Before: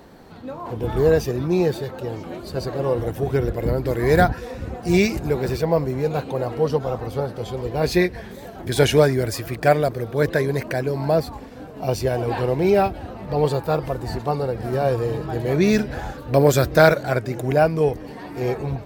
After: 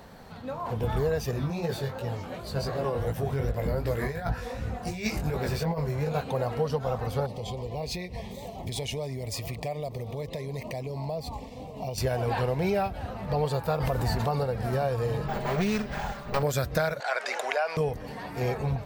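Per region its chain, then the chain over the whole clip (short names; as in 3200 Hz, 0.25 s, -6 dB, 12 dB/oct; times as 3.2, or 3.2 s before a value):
1.31–6.21 negative-ratio compressor -20 dBFS, ratio -0.5 + chorus 2.7 Hz, delay 17.5 ms, depth 4.1 ms
7.26–11.98 bell 12000 Hz -8.5 dB 0.31 oct + compressor, threshold -28 dBFS + Butterworth band-stop 1500 Hz, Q 1.5
13.8–14.44 bell 15000 Hz +6 dB 0.23 oct + fast leveller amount 70%
15.28–16.43 minimum comb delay 5 ms + careless resampling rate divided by 2×, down filtered, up hold
17–17.77 Bessel high-pass 890 Hz, order 4 + air absorption 71 m + fast leveller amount 50%
whole clip: bell 330 Hz -12.5 dB 0.54 oct; compressor 10:1, threshold -23 dBFS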